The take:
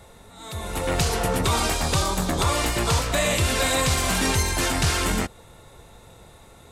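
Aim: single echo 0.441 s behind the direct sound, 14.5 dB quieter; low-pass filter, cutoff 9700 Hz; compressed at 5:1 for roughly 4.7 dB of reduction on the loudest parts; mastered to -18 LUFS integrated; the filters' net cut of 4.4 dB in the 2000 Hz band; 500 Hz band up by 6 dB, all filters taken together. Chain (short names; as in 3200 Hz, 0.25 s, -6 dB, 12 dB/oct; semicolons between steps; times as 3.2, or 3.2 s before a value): LPF 9700 Hz; bell 500 Hz +7.5 dB; bell 2000 Hz -6 dB; compressor 5:1, threshold -21 dBFS; echo 0.441 s -14.5 dB; gain +7.5 dB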